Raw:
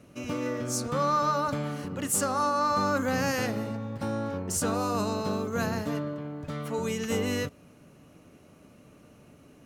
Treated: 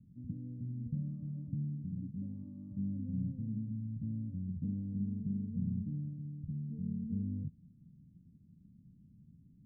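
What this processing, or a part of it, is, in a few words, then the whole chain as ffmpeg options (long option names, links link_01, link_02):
the neighbour's flat through the wall: -af "lowpass=frequency=180:width=0.5412,lowpass=frequency=180:width=1.3066,equalizer=frequency=200:width_type=o:width=0.71:gain=6,volume=-3dB"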